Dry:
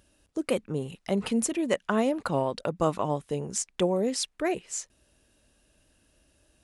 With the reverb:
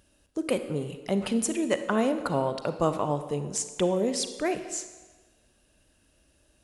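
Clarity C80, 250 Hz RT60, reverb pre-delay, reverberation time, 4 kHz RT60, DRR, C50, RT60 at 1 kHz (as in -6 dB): 11.5 dB, 1.3 s, 34 ms, 1.3 s, 1.1 s, 9.5 dB, 10.0 dB, 1.4 s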